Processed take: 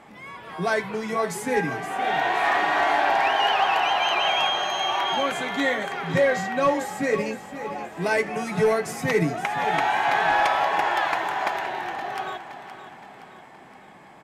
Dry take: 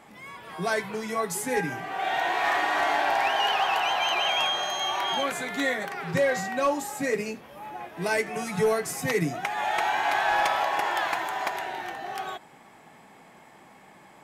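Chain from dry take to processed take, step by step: low-pass 3.8 kHz 6 dB/octave; on a send: feedback delay 519 ms, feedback 51%, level -12 dB; on the sum: trim +3.5 dB

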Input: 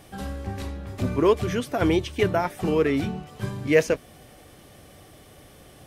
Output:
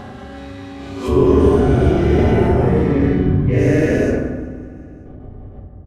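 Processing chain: every event in the spectrogram widened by 480 ms; flange 0.38 Hz, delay 9.7 ms, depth 4.7 ms, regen -75%; level-controlled noise filter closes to 1.1 kHz, open at -13.5 dBFS; gate with hold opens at -39 dBFS; feedback delay 186 ms, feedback 57%, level -20 dB; hard clipper -9.5 dBFS, distortion -29 dB; tilt EQ +2 dB/octave, from 1.07 s -4 dB/octave; reverberation RT60 1.4 s, pre-delay 4 ms, DRR -4 dB; upward compressor, threshold -17 dBFS; treble shelf 3.8 kHz +11.5 dB; trim -9 dB

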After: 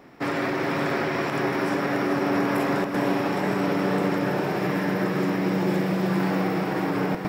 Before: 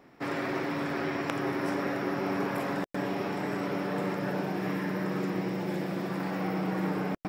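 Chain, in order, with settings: peak limiter -23 dBFS, peak gain reduction 11 dB; echo that smears into a reverb 451 ms, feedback 46%, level -6 dB; trim +7 dB

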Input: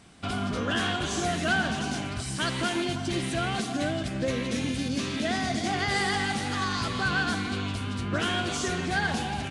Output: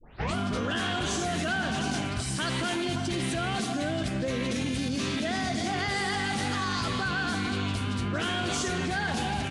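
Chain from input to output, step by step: tape start-up on the opening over 0.36 s; in parallel at +2 dB: compressor with a negative ratio -31 dBFS; on the sum: trim -6.5 dB

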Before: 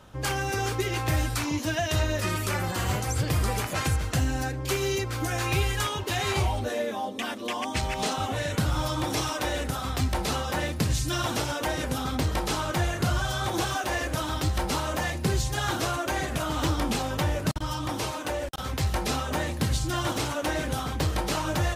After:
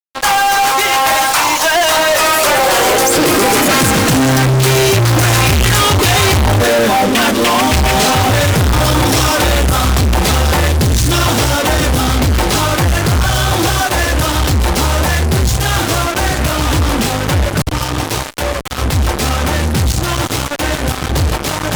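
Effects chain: Doppler pass-by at 5.02 s, 5 m/s, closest 6.8 m; high-pass sweep 840 Hz -> 70 Hz, 2.07–5.41 s; fuzz box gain 53 dB, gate -48 dBFS; trim +3.5 dB

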